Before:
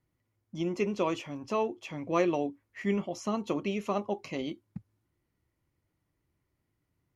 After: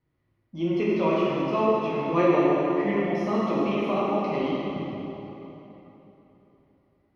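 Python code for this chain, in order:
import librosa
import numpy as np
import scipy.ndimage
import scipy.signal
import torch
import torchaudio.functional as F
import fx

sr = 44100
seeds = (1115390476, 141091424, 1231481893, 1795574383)

y = np.convolve(x, np.full(6, 1.0 / 6))[:len(x)]
y = fx.rev_plate(y, sr, seeds[0], rt60_s=3.5, hf_ratio=0.75, predelay_ms=0, drr_db=-7.5)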